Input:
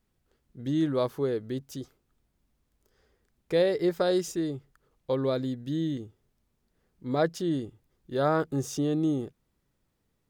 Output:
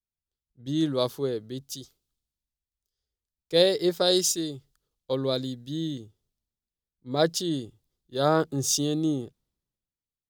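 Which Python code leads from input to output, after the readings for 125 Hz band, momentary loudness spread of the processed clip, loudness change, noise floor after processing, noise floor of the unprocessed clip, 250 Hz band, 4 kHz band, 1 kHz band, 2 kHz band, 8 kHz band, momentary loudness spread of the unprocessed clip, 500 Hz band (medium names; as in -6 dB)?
0.0 dB, 17 LU, +2.5 dB, under -85 dBFS, -76 dBFS, 0.0 dB, +12.5 dB, +1.5 dB, +1.0 dB, +14.0 dB, 16 LU, +1.5 dB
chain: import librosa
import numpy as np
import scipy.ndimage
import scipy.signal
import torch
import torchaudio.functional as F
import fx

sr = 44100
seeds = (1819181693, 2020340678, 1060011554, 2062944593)

y = fx.high_shelf_res(x, sr, hz=2800.0, db=8.0, q=1.5)
y = fx.band_widen(y, sr, depth_pct=70)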